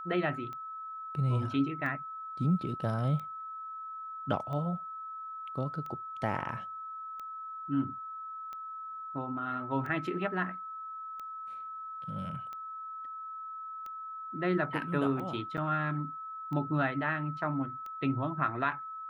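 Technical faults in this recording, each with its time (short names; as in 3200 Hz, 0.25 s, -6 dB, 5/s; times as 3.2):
tick 45 rpm -30 dBFS
tone 1300 Hz -39 dBFS
15.57–15.58 gap 8 ms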